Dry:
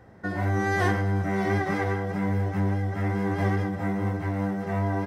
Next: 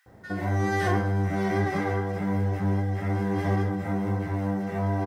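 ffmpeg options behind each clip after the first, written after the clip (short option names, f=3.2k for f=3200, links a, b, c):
-filter_complex "[0:a]acrusher=bits=11:mix=0:aa=0.000001,acrossover=split=1700[a][b];[a]adelay=60[c];[c][b]amix=inputs=2:normalize=0"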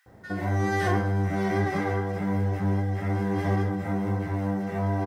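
-af anull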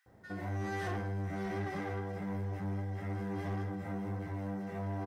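-af "asoftclip=type=tanh:threshold=-22dB,volume=-9dB"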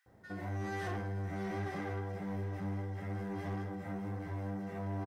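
-af "aecho=1:1:863:0.251,volume=-1.5dB"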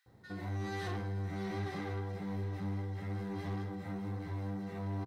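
-af "equalizer=f=125:t=o:w=0.33:g=6,equalizer=f=630:t=o:w=0.33:g=-7,equalizer=f=1.6k:t=o:w=0.33:g=-3,equalizer=f=4k:t=o:w=0.33:g=10"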